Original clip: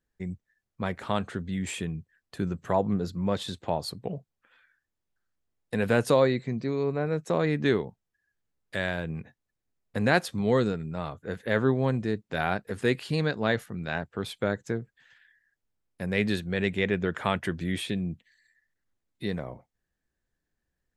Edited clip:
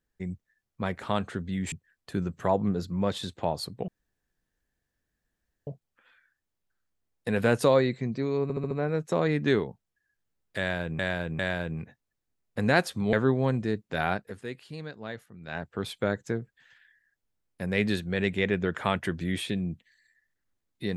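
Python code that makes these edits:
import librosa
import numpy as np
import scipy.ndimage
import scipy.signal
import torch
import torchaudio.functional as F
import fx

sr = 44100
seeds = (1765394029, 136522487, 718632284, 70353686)

y = fx.edit(x, sr, fx.cut(start_s=1.72, length_s=0.25),
    fx.insert_room_tone(at_s=4.13, length_s=1.79),
    fx.stutter(start_s=6.89, slice_s=0.07, count=5),
    fx.repeat(start_s=8.77, length_s=0.4, count=3),
    fx.cut(start_s=10.51, length_s=1.02),
    fx.fade_down_up(start_s=12.51, length_s=1.6, db=-12.5, fade_s=0.31), tone=tone)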